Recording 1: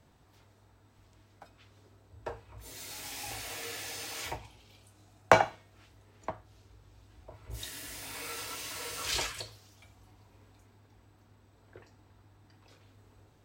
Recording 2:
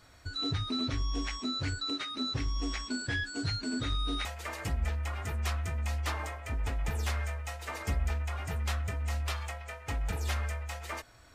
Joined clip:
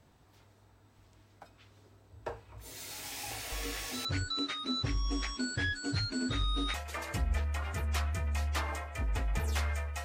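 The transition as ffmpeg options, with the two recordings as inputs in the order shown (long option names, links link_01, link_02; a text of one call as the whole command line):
ffmpeg -i cue0.wav -i cue1.wav -filter_complex "[1:a]asplit=2[link_01][link_02];[0:a]apad=whole_dur=10.04,atrim=end=10.04,atrim=end=4.052[link_03];[link_02]atrim=start=1.558:end=7.55[link_04];[link_01]atrim=start=1.03:end=1.56,asetpts=PTS-STARTPTS,volume=-8dB,afade=type=in:duration=0.004:curve=hsin,afade=type=out:start_time=0.526:duration=0.004:curve=hsin,adelay=3520[link_05];[link_03][link_04]acrossfade=duration=0.004:curve1=hsin:curve2=hsin[link_06];[link_06][link_05]amix=inputs=2:normalize=0" out.wav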